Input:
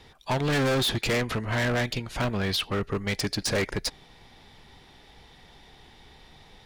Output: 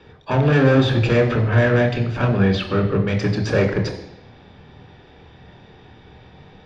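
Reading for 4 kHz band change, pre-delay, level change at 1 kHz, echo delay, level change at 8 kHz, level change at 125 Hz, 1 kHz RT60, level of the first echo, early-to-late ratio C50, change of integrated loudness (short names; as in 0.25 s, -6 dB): -2.0 dB, 24 ms, +5.5 dB, none, -9.0 dB, +12.5 dB, 0.85 s, none, 8.5 dB, +8.5 dB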